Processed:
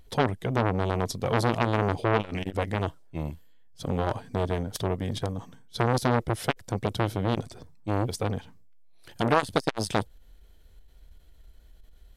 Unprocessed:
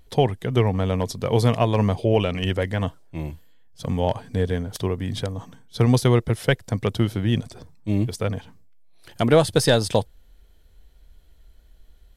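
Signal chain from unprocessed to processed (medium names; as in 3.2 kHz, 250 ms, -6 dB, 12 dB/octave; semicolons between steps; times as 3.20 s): transformer saturation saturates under 1.3 kHz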